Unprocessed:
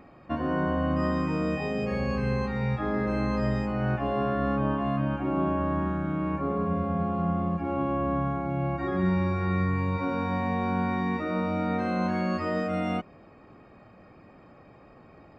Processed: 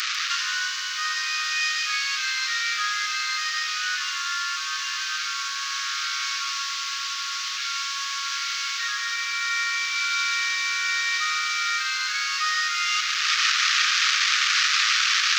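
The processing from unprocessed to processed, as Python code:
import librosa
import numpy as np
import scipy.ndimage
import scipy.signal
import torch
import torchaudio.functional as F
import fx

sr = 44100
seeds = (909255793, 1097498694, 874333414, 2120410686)

y = fx.delta_mod(x, sr, bps=32000, step_db=-32.5)
y = fx.rider(y, sr, range_db=10, speed_s=0.5)
y = scipy.signal.sosfilt(scipy.signal.butter(16, 1200.0, 'highpass', fs=sr, output='sos'), y)
y = fx.high_shelf(y, sr, hz=2800.0, db=10.5)
y = fx.echo_crushed(y, sr, ms=146, feedback_pct=35, bits=9, wet_db=-9)
y = F.gain(torch.from_numpy(y), 8.5).numpy()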